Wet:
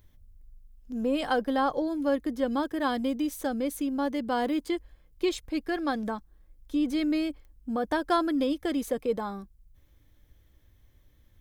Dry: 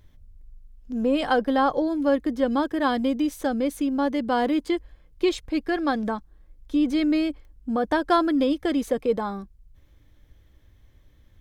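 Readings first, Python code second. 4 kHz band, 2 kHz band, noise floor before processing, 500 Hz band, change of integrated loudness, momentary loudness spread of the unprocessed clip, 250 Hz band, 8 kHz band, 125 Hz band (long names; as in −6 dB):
−4.0 dB, −4.5 dB, −57 dBFS, −5.0 dB, −5.0 dB, 8 LU, −5.0 dB, 0.0 dB, can't be measured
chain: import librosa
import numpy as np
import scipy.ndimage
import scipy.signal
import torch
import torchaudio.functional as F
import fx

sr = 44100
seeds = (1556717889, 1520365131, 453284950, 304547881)

y = fx.high_shelf(x, sr, hz=9100.0, db=11.5)
y = y * librosa.db_to_amplitude(-5.0)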